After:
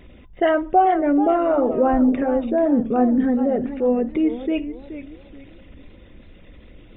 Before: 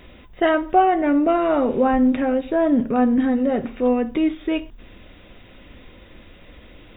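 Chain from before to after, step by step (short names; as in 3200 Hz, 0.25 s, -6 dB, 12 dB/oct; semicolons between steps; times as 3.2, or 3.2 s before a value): formant sharpening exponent 1.5; warbling echo 0.431 s, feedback 31%, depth 158 cents, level -12 dB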